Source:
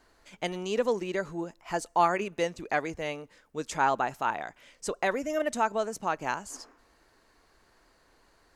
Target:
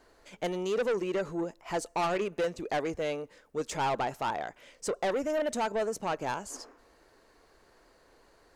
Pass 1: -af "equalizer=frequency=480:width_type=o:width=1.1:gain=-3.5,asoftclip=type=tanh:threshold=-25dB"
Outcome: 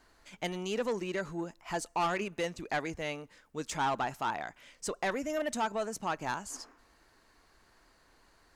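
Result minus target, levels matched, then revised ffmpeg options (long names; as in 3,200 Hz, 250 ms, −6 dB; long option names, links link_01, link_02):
500 Hz band −2.5 dB
-af "equalizer=frequency=480:width_type=o:width=1.1:gain=6.5,asoftclip=type=tanh:threshold=-25dB"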